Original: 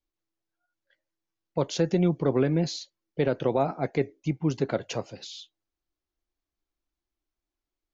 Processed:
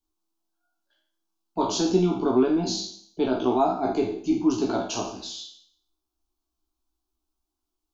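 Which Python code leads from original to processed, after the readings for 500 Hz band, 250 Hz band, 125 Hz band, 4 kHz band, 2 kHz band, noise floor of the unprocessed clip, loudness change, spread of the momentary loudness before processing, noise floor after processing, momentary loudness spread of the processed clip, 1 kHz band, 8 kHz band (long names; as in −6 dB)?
+2.0 dB, +4.5 dB, −6.0 dB, +5.5 dB, −2.0 dB, below −85 dBFS, +3.0 dB, 14 LU, −84 dBFS, 13 LU, +7.0 dB, can't be measured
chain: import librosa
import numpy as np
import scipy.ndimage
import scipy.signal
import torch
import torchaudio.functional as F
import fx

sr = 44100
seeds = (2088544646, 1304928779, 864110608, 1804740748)

y = fx.spec_trails(x, sr, decay_s=0.6)
y = fx.fixed_phaser(y, sr, hz=520.0, stages=6)
y = fx.doubler(y, sr, ms=16.0, db=-3)
y = F.gain(torch.from_numpy(y), 3.5).numpy()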